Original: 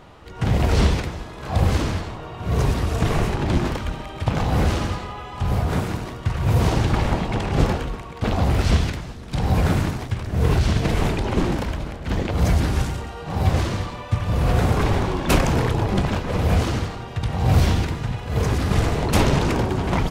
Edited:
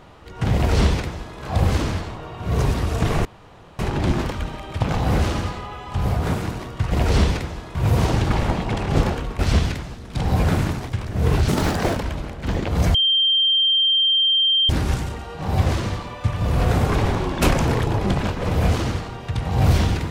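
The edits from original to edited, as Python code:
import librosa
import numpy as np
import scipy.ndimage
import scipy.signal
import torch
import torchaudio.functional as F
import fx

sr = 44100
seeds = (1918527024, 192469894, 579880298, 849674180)

y = fx.edit(x, sr, fx.duplicate(start_s=0.55, length_s=0.83, to_s=6.38),
    fx.insert_room_tone(at_s=3.25, length_s=0.54),
    fx.cut(start_s=8.02, length_s=0.55),
    fx.speed_span(start_s=10.66, length_s=0.92, speed=1.94),
    fx.insert_tone(at_s=12.57, length_s=1.75, hz=3160.0, db=-14.5), tone=tone)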